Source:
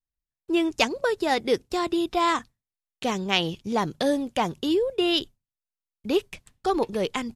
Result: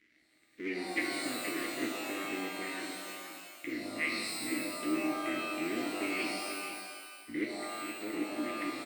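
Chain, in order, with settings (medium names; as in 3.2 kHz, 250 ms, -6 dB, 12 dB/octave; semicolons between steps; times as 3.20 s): cycle switcher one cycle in 3, inverted; upward compressor, threshold -27 dBFS; crackle 180 per s -33 dBFS; tape speed -17%; two resonant band-passes 800 Hz, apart 2.7 oct; delay 472 ms -9.5 dB; pitch-shifted reverb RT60 1.4 s, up +12 st, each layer -2 dB, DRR 1.5 dB; trim -5 dB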